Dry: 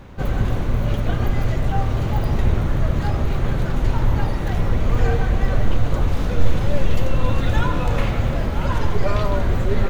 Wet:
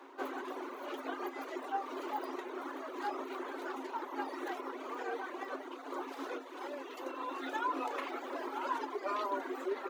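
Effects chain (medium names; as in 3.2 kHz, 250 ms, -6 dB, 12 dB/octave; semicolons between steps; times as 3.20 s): reverb removal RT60 1 s; compression 6:1, threshold -18 dBFS, peak gain reduction 10.5 dB; rippled Chebyshev high-pass 260 Hz, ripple 9 dB; trim -1.5 dB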